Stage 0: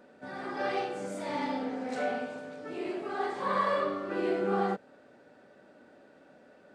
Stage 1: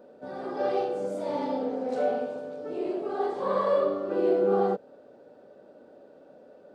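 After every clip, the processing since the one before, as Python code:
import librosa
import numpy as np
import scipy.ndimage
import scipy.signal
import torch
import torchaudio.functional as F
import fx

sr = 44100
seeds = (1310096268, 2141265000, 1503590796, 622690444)

y = fx.graphic_eq(x, sr, hz=(500, 2000, 8000), db=(9, -10, -6))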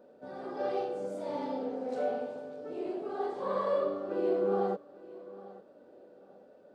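y = fx.echo_feedback(x, sr, ms=850, feedback_pct=27, wet_db=-19.0)
y = F.gain(torch.from_numpy(y), -5.5).numpy()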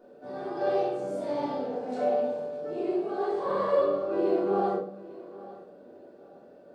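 y = fx.room_shoebox(x, sr, seeds[0], volume_m3=470.0, walls='furnished', distance_m=3.3)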